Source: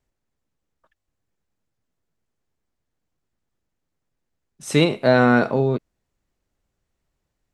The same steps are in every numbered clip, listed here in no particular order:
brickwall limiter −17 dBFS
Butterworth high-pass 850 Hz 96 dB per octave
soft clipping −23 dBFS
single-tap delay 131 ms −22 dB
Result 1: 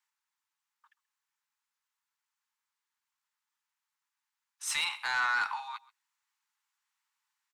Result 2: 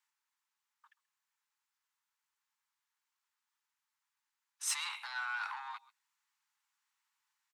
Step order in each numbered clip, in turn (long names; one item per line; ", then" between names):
Butterworth high-pass, then brickwall limiter, then soft clipping, then single-tap delay
brickwall limiter, then single-tap delay, then soft clipping, then Butterworth high-pass